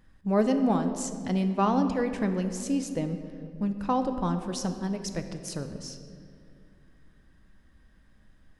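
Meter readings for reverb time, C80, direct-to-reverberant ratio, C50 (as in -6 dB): 2.4 s, 9.5 dB, 7.0 dB, 8.5 dB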